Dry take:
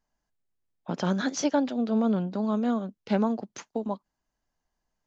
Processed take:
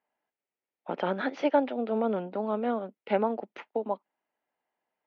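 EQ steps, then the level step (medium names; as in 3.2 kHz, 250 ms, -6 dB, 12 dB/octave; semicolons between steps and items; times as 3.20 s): cabinet simulation 490–2500 Hz, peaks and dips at 680 Hz -3 dB, 1.1 kHz -8 dB, 1.6 kHz -7 dB; +6.5 dB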